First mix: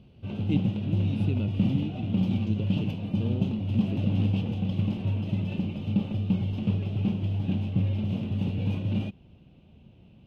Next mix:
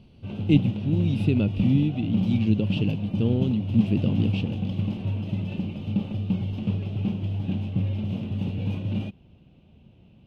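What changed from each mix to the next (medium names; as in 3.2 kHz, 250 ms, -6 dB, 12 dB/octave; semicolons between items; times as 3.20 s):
speech +9.0 dB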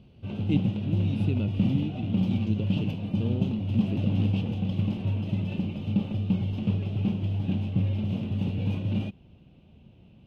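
speech -7.5 dB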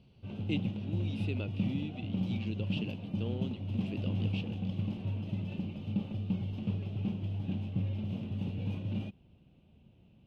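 speech: add frequency weighting A; background -7.5 dB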